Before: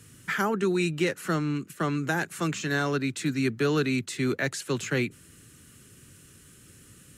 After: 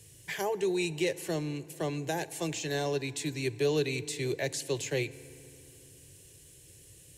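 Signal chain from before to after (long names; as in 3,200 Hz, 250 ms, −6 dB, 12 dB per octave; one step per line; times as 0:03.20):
phaser with its sweep stopped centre 550 Hz, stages 4
feedback delay network reverb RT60 3 s, low-frequency decay 1.3×, high-frequency decay 0.6×, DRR 16.5 dB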